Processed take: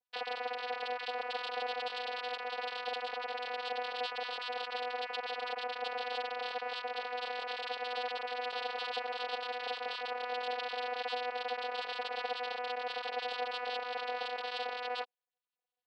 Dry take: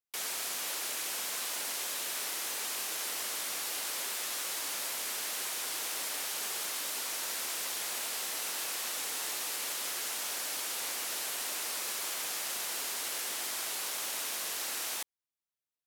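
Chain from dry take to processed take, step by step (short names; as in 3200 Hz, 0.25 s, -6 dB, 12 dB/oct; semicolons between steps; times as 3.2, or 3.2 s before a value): sine-wave speech; band shelf 1500 Hz -10 dB; vocoder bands 8, saw 247 Hz; gain +5 dB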